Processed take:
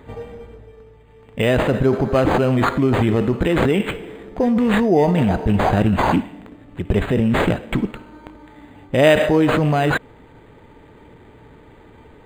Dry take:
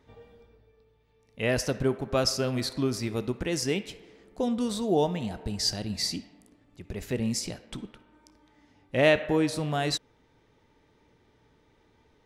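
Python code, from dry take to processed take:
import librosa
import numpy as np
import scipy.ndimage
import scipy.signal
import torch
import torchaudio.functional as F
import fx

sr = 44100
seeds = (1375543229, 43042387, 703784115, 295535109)

p1 = fx.over_compress(x, sr, threshold_db=-33.0, ratio=-0.5)
p2 = x + (p1 * librosa.db_to_amplitude(1.5))
p3 = np.interp(np.arange(len(p2)), np.arange(len(p2))[::8], p2[::8])
y = p3 * librosa.db_to_amplitude(8.5)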